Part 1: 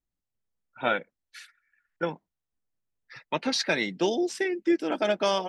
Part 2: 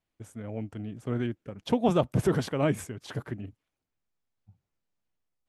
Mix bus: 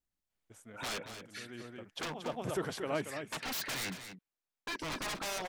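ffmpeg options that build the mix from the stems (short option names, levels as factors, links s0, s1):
-filter_complex "[0:a]alimiter=limit=0.15:level=0:latency=1:release=157,aeval=exprs='0.0251*(abs(mod(val(0)/0.0251+3,4)-2)-1)':c=same,volume=1,asplit=3[s0][s1][s2];[s0]atrim=end=3.96,asetpts=PTS-STARTPTS,afade=t=out:st=3.956:d=0.004:c=hsin[s3];[s1]atrim=start=3.96:end=4.67,asetpts=PTS-STARTPTS,volume=0[s4];[s2]atrim=start=4.67,asetpts=PTS-STARTPTS,afade=t=in:d=0.004:c=hsin[s5];[s3][s4][s5]concat=n=3:v=0:a=1,asplit=3[s6][s7][s8];[s7]volume=0.316[s9];[1:a]lowshelf=f=270:g=-10.5,adelay=300,volume=0.631,asplit=2[s10][s11];[s11]volume=0.398[s12];[s8]apad=whole_len=255056[s13];[s10][s13]sidechaincompress=threshold=0.00141:ratio=3:attack=6.9:release=203[s14];[s9][s12]amix=inputs=2:normalize=0,aecho=0:1:230:1[s15];[s6][s14][s15]amix=inputs=3:normalize=0,lowshelf=f=460:g=-4"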